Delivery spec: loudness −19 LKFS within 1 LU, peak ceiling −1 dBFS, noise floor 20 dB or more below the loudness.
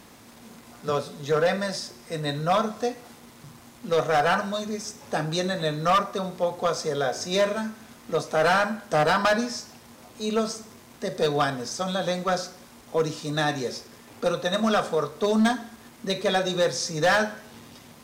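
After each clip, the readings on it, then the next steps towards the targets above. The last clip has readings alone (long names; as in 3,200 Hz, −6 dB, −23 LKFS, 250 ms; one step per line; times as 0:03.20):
share of clipped samples 1.2%; peaks flattened at −16.0 dBFS; integrated loudness −25.5 LKFS; sample peak −16.0 dBFS; target loudness −19.0 LKFS
→ clipped peaks rebuilt −16 dBFS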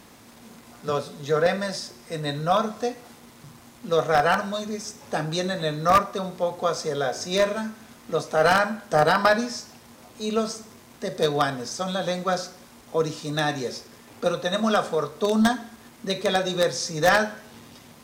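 share of clipped samples 0.0%; integrated loudness −24.5 LKFS; sample peak −7.0 dBFS; target loudness −19.0 LKFS
→ level +5.5 dB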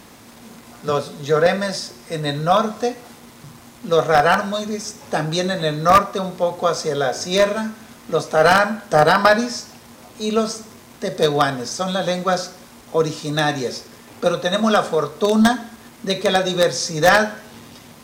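integrated loudness −19.0 LKFS; sample peak −1.5 dBFS; background noise floor −44 dBFS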